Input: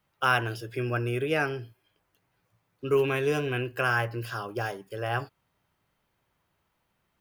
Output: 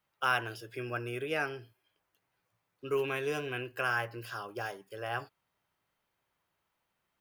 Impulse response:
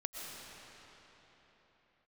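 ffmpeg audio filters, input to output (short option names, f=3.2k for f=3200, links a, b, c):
-af "lowshelf=f=300:g=-8.5,volume=-4.5dB"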